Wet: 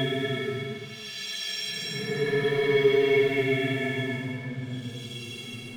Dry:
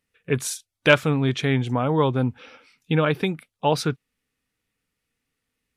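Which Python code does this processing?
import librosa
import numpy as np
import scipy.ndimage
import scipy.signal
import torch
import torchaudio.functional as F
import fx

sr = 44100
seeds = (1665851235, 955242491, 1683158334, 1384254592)

y = fx.stiff_resonator(x, sr, f0_hz=200.0, decay_s=0.24, stiffness=0.03)
y = fx.leveller(y, sr, passes=2)
y = fx.paulstretch(y, sr, seeds[0], factor=14.0, window_s=0.1, from_s=1.28)
y = y * 10.0 ** (2.5 / 20.0)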